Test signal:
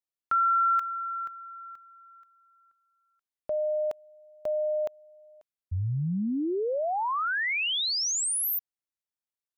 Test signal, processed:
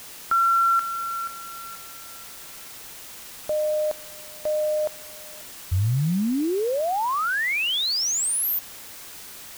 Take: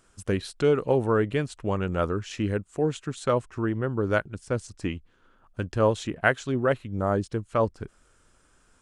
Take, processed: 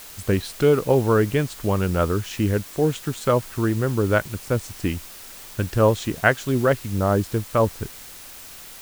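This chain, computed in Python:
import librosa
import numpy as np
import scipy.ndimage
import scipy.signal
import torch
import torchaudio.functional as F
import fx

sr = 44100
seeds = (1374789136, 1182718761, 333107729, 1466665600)

p1 = fx.low_shelf(x, sr, hz=130.0, db=5.0)
p2 = fx.quant_dither(p1, sr, seeds[0], bits=6, dither='triangular')
y = p1 + (p2 * librosa.db_to_amplitude(-5.0))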